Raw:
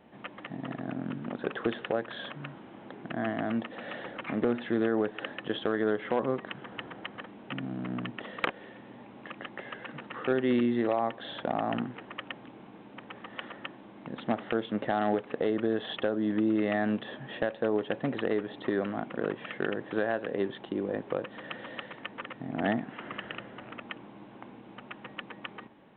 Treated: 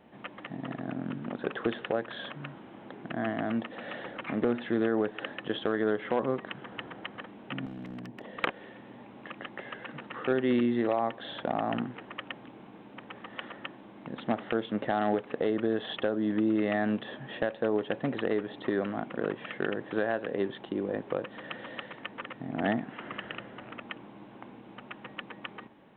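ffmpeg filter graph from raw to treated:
-filter_complex "[0:a]asettb=1/sr,asplit=3[a][b][c];[a]atrim=end=7.664[d];[b]atrim=start=7.66:end=8.38,asetpts=PTS-STARTPTS,afade=t=in:d=0.004:c=qsin,afade=t=out:st=0.716:d=0.004:c=qsin,equalizer=f=1.3k:t=o:w=0.35:g=-10,acrossover=split=110|1600[e][f][g];[e]acompressor=threshold=-57dB:ratio=4[h];[f]acompressor=threshold=-39dB:ratio=4[i];[g]acompressor=threshold=-54dB:ratio=4[j];[h][i][j]amix=inputs=3:normalize=0,aeval=exprs='0.02*(abs(mod(val(0)/0.02+3,4)-2)-1)':c=same[k];[c]atrim=start=8.376[l];[d][k]acrossfade=d=0.004:c1=hsin:c2=qsin[m];[m][l]acrossfade=d=0.004:c1=qsin:c2=hsin"

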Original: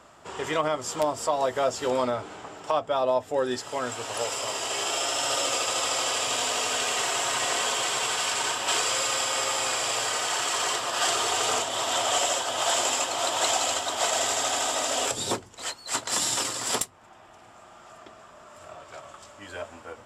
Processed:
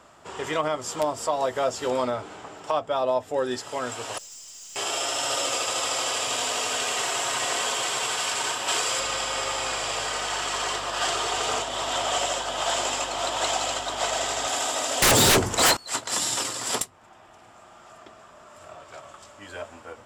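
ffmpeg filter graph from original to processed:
-filter_complex "[0:a]asettb=1/sr,asplit=3[a][b][c];[a]atrim=end=4.184[d];[b]atrim=start=4.18:end=4.76,asetpts=PTS-STARTPTS,afade=t=in:d=0.004:c=qsin,afade=t=out:st=0.576:d=0.004:c=qsin,bandpass=f=6.4k:t=q:w=3.6,aeval=exprs='(tanh(89.1*val(0)+0.25)-tanh(0.25))/89.1':c=same[e];[c]atrim=start=4.756[f];[d][e]acrossfade=d=0.004:c1=hsin:c2=qsin[g];[g][f]acrossfade=d=0.004:c1=qsin:c2=hsin,asettb=1/sr,asplit=3[h][i][j];[h]atrim=end=9.004[k];[i]atrim=start=9:end=14.48,asetpts=PTS-STARTPTS,afade=t=in:d=0.004:c=qsin,afade=t=out:st=5.476:d=0.004:c=qsin,highshelf=f=10k:g=-12,aeval=exprs='val(0)+0.00398*(sin(2*PI*50*n/s)+sin(2*PI*2*50*n/s)/2+sin(2*PI*3*50*n/s)/3+sin(2*PI*4*50*n/s)/4+sin(2*PI*5*50*n/s)/5)':c=same[l];[j]atrim=start=14.476[m];[k][l]acrossfade=d=0.004:c1=hsin:c2=qsin[n];[n][m]acrossfade=d=0.004:c1=qsin:c2=hsin,asettb=1/sr,asplit=3[o][p][q];[o]atrim=end=15.024[r];[p]atrim=start=15.02:end=15.77,asetpts=PTS-STARTPTS,afade=t=in:d=0.004:c=qsin,afade=t=out:st=0.746:d=0.004:c=qsin,acrossover=split=4000[s][t];[t]acompressor=threshold=-36dB:ratio=4:attack=1:release=60[u];[s][u]amix=inputs=2:normalize=0,equalizer=f=3.4k:t=o:w=1.5:g=-3.5,aeval=exprs='0.2*sin(PI/2*8.91*val(0)/0.2)':c=same[v];[q]atrim=start=15.766[w];[r][v]acrossfade=d=0.004:c1=hsin:c2=qsin[x];[x][w]acrossfade=d=0.004:c1=qsin:c2=hsin"

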